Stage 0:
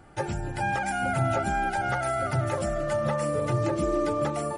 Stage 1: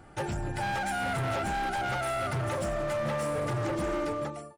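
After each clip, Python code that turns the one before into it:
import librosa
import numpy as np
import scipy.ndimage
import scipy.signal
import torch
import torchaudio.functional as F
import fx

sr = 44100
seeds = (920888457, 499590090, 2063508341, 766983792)

y = fx.fade_out_tail(x, sr, length_s=0.69)
y = np.clip(10.0 ** (28.0 / 20.0) * y, -1.0, 1.0) / 10.0 ** (28.0 / 20.0)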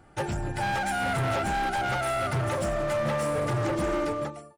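y = fx.upward_expand(x, sr, threshold_db=-43.0, expansion=1.5)
y = y * 10.0 ** (4.0 / 20.0)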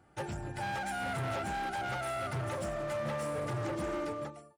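y = scipy.signal.sosfilt(scipy.signal.butter(2, 50.0, 'highpass', fs=sr, output='sos'), x)
y = y * 10.0 ** (-8.0 / 20.0)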